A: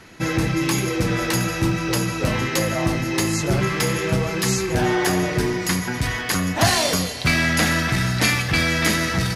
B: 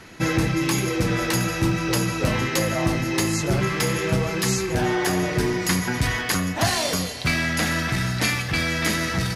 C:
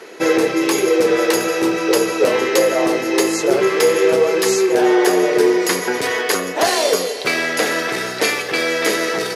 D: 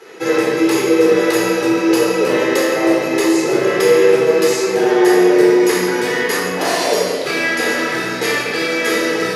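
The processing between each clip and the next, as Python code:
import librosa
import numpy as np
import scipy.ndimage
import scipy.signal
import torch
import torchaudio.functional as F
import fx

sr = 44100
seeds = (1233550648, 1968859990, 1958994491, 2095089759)

y1 = fx.rider(x, sr, range_db=10, speed_s=0.5)
y1 = y1 * librosa.db_to_amplitude(-2.0)
y2 = fx.highpass_res(y1, sr, hz=430.0, q=4.9)
y2 = y2 * librosa.db_to_amplitude(4.0)
y3 = fx.room_shoebox(y2, sr, seeds[0], volume_m3=1300.0, walls='mixed', distance_m=4.0)
y3 = y3 * librosa.db_to_amplitude(-7.0)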